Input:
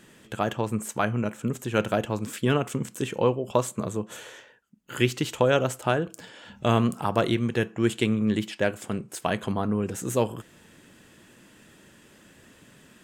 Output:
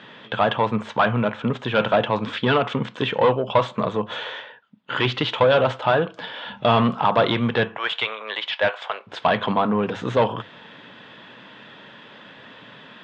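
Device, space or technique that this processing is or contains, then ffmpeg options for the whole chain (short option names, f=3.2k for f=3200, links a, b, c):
overdrive pedal into a guitar cabinet: -filter_complex "[0:a]bandreject=f=50:t=h:w=6,bandreject=f=100:t=h:w=6,asettb=1/sr,asplit=3[a][b][c];[a]atrim=end=7.774[d];[b]atrim=start=7.77:end=9.07,asetpts=PTS-STARTPTS,afade=t=in:d=0.004:c=qsin,afade=t=out:st=1.296:d=0.004:c=qsin,highpass=f=600:w=0.5412,highpass=f=600:w=1.3066[e];[c]atrim=start=9.066[f];[d][e]acrossfade=d=0.004:c1=hsin:c2=qsin[g];[g][f]acrossfade=d=0.004:c1=qsin:c2=hsin,asplit=2[h][i];[i]highpass=f=720:p=1,volume=22dB,asoftclip=type=tanh:threshold=-6dB[j];[h][j]amix=inputs=2:normalize=0,lowpass=f=1.4k:p=1,volume=-6dB,highpass=82,equalizer=f=120:t=q:w=4:g=5,equalizer=f=350:t=q:w=4:g=-8,equalizer=f=960:t=q:w=4:g=4,equalizer=f=3.5k:t=q:w=4:g=9,lowpass=f=4.3k:w=0.5412,lowpass=f=4.3k:w=1.3066"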